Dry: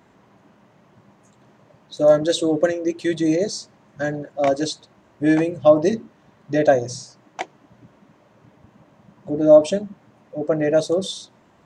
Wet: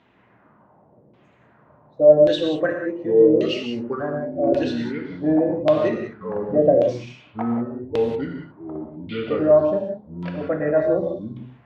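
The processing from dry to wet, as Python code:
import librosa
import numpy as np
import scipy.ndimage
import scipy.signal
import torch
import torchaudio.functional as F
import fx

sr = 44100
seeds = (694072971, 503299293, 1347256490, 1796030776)

y = fx.echo_pitch(x, sr, ms=391, semitones=-5, count=2, db_per_echo=-6.0)
y = fx.filter_lfo_lowpass(y, sr, shape='saw_down', hz=0.88, low_hz=400.0, high_hz=3400.0, q=2.5)
y = fx.rev_gated(y, sr, seeds[0], gate_ms=210, shape='flat', drr_db=2.5)
y = y * 10.0 ** (-5.5 / 20.0)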